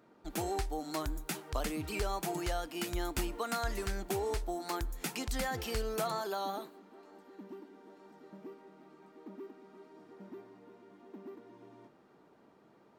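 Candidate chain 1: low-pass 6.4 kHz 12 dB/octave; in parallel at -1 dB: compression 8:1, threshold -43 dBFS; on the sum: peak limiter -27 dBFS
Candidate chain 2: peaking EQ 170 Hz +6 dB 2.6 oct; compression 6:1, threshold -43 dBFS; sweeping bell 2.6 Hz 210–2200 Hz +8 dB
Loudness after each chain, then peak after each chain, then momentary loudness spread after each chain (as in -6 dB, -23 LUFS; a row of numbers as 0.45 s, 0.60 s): -39.0 LUFS, -46.0 LUFS; -27.0 dBFS, -24.5 dBFS; 16 LU, 8 LU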